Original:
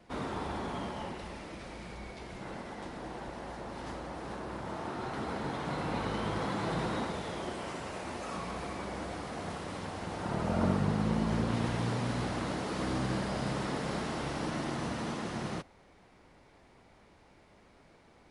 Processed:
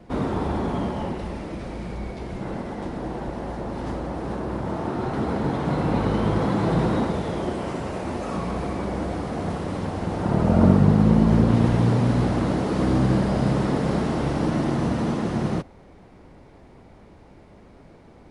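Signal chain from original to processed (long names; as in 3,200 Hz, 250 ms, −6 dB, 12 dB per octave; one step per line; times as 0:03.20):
tilt shelving filter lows +6 dB, about 800 Hz
level +8.5 dB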